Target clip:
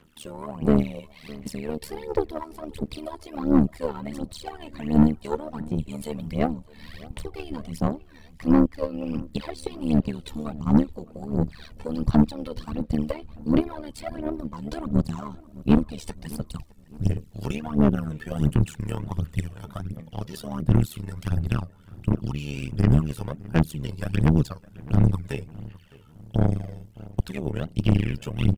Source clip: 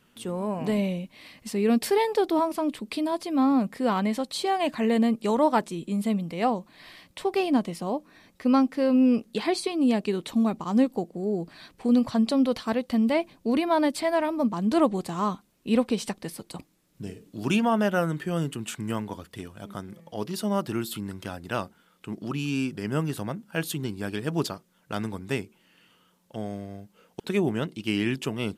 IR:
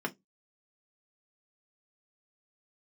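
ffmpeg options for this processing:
-filter_complex "[0:a]asubboost=boost=9.5:cutoff=86,acrossover=split=380[s0][s1];[s1]acompressor=threshold=0.0126:ratio=10[s2];[s0][s2]amix=inputs=2:normalize=0,aphaser=in_gain=1:out_gain=1:delay=2.3:decay=0.75:speed=1.4:type=sinusoidal,tremolo=f=75:d=0.857,asoftclip=type=tanh:threshold=0.299,aeval=exprs='0.282*(cos(1*acos(clip(val(0)/0.282,-1,1)))-cos(1*PI/2))+0.0447*(cos(2*acos(clip(val(0)/0.282,-1,1)))-cos(2*PI/2))+0.0562*(cos(4*acos(clip(val(0)/0.282,-1,1)))-cos(4*PI/2))+0.0126*(cos(7*acos(clip(val(0)/0.282,-1,1)))-cos(7*PI/2))':c=same,asplit=2[s3][s4];[s4]adelay=611,lowpass=f=2600:p=1,volume=0.0944,asplit=2[s5][s6];[s6]adelay=611,lowpass=f=2600:p=1,volume=0.42,asplit=2[s7][s8];[s8]adelay=611,lowpass=f=2600:p=1,volume=0.42[s9];[s3][s5][s7][s9]amix=inputs=4:normalize=0,volume=1.5" -ar 44100 -c:a adpcm_ima_wav

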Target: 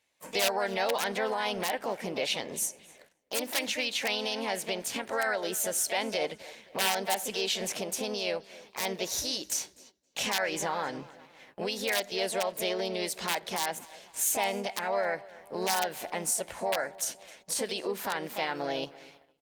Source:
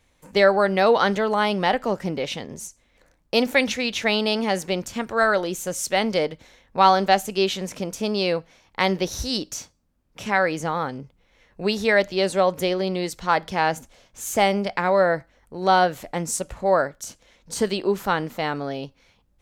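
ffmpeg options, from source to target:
-filter_complex "[0:a]asplit=2[s0][s1];[s1]acompressor=threshold=0.0316:ratio=16,volume=1.33[s2];[s0][s2]amix=inputs=2:normalize=0,aeval=exprs='(mod(2.11*val(0)+1,2)-1)/2.11':c=same,alimiter=limit=0.15:level=0:latency=1:release=156,highpass=f=810:p=1,equalizer=f=1200:w=6.8:g=-13,asplit=2[s3][s4];[s4]adelay=262,lowpass=f=4600:p=1,volume=0.106,asplit=2[s5][s6];[s6]adelay=262,lowpass=f=4600:p=1,volume=0.55,asplit=2[s7][s8];[s8]adelay=262,lowpass=f=4600:p=1,volume=0.55,asplit=2[s9][s10];[s10]adelay=262,lowpass=f=4600:p=1,volume=0.55[s11];[s3][s5][s7][s9][s11]amix=inputs=5:normalize=0,asplit=2[s12][s13];[s13]asetrate=52444,aresample=44100,atempo=0.840896,volume=0.562[s14];[s12][s14]amix=inputs=2:normalize=0,agate=range=0.178:threshold=0.00251:ratio=16:detection=peak,volume=0.891" -ar 48000 -c:a libopus -b:a 48k

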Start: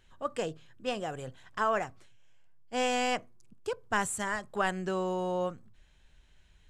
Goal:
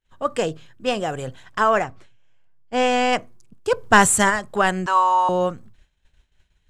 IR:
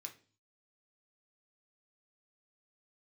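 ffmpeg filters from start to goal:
-filter_complex "[0:a]asettb=1/sr,asplit=3[s0][s1][s2];[s0]atrim=end=1.824[s3];[s1]atrim=start=1.82:end=3.13,asetpts=PTS-STARTPTS,afade=t=in:d=0.004:c=qsin,afade=t=out:st=1.306:d=0.004:c=qsin,lowpass=f=3200:p=1[s4];[s2]atrim=start=3.126[s5];[s3][s4]acrossfade=d=0.004:c1=hsin:c2=qsin[s6];[s6][s5]acrossfade=d=0.004:c1=qsin:c2=hsin,asplit=3[s7][s8][s9];[s7]afade=t=out:st=3.7:d=0.02[s10];[s8]acontrast=63,afade=t=in:st=3.7:d=0.02,afade=t=out:st=4.29:d=0.02[s11];[s9]afade=t=in:st=4.29:d=0.02[s12];[s10][s11][s12]amix=inputs=3:normalize=0,asettb=1/sr,asplit=3[s13][s14][s15];[s13]atrim=end=4.864[s16];[s14]atrim=start=4.86:end=5.29,asetpts=PTS-STARTPTS,afade=t=in:d=0.004:c=qsin,afade=t=out:st=0.426:d=0.004:c=qsin,highpass=f=1000:t=q:w=9.2[s17];[s15]atrim=start=5.286[s18];[s16][s17]acrossfade=d=0.004:c1=hsin:c2=qsin[s19];[s19][s18]acrossfade=d=0.004:c1=qsin:c2=hsin,acontrast=86,agate=range=0.0224:threshold=0.00794:ratio=3:detection=peak,volume=1.5"

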